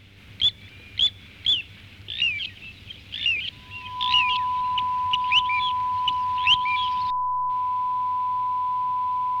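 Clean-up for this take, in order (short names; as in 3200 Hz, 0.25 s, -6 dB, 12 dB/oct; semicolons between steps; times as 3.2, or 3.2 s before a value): de-hum 97.8 Hz, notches 9; notch 1000 Hz, Q 30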